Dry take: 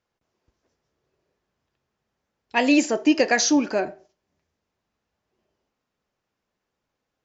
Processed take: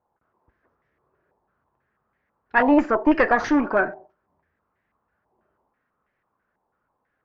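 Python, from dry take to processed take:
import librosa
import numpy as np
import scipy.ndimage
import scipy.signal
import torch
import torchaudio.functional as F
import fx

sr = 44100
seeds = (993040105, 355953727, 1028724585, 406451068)

y = fx.diode_clip(x, sr, knee_db=-21.0)
y = fx.filter_held_lowpass(y, sr, hz=6.1, low_hz=890.0, high_hz=1900.0)
y = y * 10.0 ** (2.5 / 20.0)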